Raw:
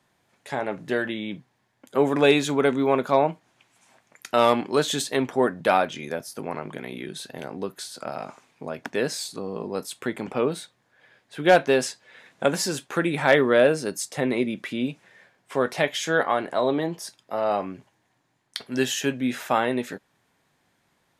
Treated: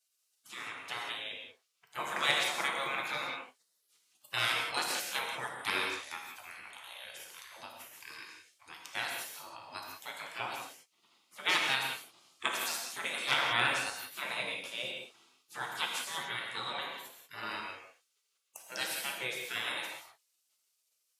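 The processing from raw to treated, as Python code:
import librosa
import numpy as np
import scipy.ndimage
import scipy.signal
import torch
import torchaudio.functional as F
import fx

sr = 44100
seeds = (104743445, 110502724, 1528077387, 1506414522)

y = fx.spec_gate(x, sr, threshold_db=-20, keep='weak')
y = scipy.signal.sosfilt(scipy.signal.butter(2, 190.0, 'highpass', fs=sr, output='sos'), y)
y = fx.rev_gated(y, sr, seeds[0], gate_ms=210, shape='flat', drr_db=0.5)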